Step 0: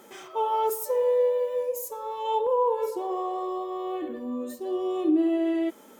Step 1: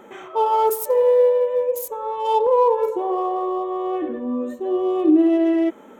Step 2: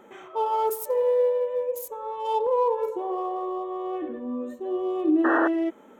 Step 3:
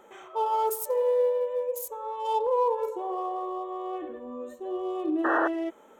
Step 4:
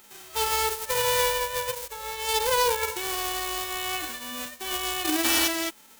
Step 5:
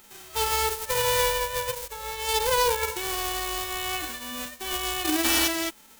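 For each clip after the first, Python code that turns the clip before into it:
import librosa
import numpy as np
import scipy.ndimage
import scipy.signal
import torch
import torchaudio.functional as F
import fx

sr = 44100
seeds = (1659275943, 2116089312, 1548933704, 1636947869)

y1 = fx.wiener(x, sr, points=9)
y1 = y1 * 10.0 ** (7.5 / 20.0)
y2 = fx.spec_paint(y1, sr, seeds[0], shape='noise', start_s=5.24, length_s=0.24, low_hz=240.0, high_hz=1900.0, level_db=-17.0)
y2 = y2 * 10.0 ** (-6.5 / 20.0)
y3 = fx.graphic_eq(y2, sr, hz=(125, 250, 2000, 8000), db=(-7, -9, -3, 3))
y4 = fx.envelope_flatten(y3, sr, power=0.1)
y4 = fx.rider(y4, sr, range_db=4, speed_s=2.0)
y5 = fx.low_shelf(y4, sr, hz=130.0, db=7.0)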